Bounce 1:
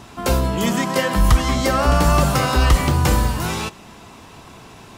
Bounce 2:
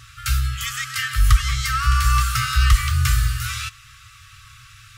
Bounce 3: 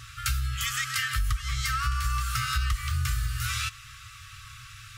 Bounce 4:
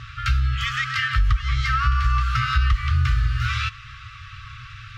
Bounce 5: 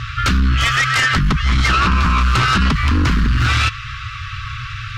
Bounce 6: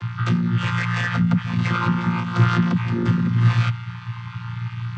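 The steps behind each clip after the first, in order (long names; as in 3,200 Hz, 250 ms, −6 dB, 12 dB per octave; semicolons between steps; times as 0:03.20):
brick-wall band-stop 130–1,100 Hz
downward compressor 6 to 1, threshold −25 dBFS, peak gain reduction 15.5 dB
high-frequency loss of the air 240 metres; level +8.5 dB
sine wavefolder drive 11 dB, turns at −8 dBFS; level −3 dB
channel vocoder with a chord as carrier bare fifth, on A#2; level −1 dB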